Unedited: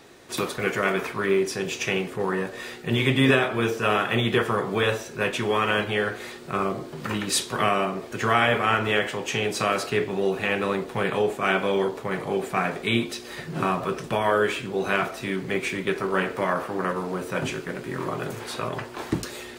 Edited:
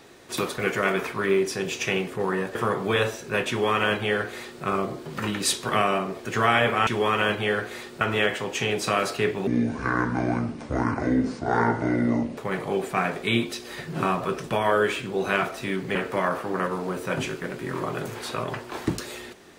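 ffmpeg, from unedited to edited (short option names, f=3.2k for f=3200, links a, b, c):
-filter_complex "[0:a]asplit=7[a][b][c][d][e][f][g];[a]atrim=end=2.552[h];[b]atrim=start=4.418:end=8.742[i];[c]atrim=start=5.358:end=6.502[j];[d]atrim=start=8.738:end=10.204[k];[e]atrim=start=10.2:end=11.97,asetpts=PTS-STARTPTS,asetrate=26901,aresample=44100,atrim=end_sample=127962,asetpts=PTS-STARTPTS[l];[f]atrim=start=11.966:end=15.552[m];[g]atrim=start=16.198[n];[h][i]acrossfade=d=0.004:c1=hsin:c2=hsin[o];[o][j]acrossfade=d=0.004:c1=hsin:c2=hsin[p];[p][k]acrossfade=d=0.004:c1=hsin:c2=hsin[q];[q][l]acrossfade=d=0.004:c1=hsin:c2=hsin[r];[r][m]acrossfade=d=0.004:c1=hsin:c2=hsin[s];[s][n]acrossfade=d=0.004:c1=hsin:c2=hsin"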